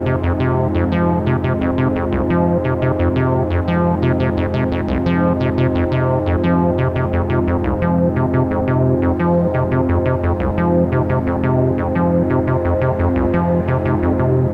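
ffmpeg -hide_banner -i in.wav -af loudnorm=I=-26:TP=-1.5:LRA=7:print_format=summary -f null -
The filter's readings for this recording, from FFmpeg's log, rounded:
Input Integrated:    -16.9 LUFS
Input True Peak:      -3.5 dBTP
Input LRA:             0.5 LU
Input Threshold:     -26.9 LUFS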